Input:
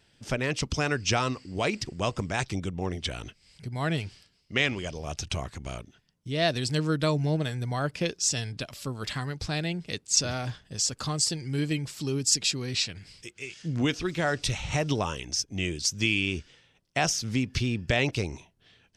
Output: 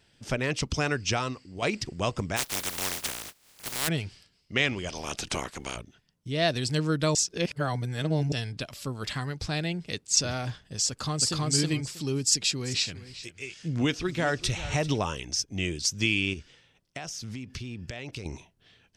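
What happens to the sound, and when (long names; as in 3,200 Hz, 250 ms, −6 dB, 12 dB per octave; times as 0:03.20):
0:00.85–0:01.62: fade out, to −8 dB
0:02.36–0:03.87: compressing power law on the bin magnitudes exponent 0.13
0:04.88–0:05.75: ceiling on every frequency bin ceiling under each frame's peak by 20 dB
0:07.15–0:08.32: reverse
0:10.89–0:11.48: delay throw 320 ms, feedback 15%, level 0 dB
0:12.21–0:14.98: single-tap delay 390 ms −15.5 dB
0:16.33–0:18.26: downward compressor, threshold −34 dBFS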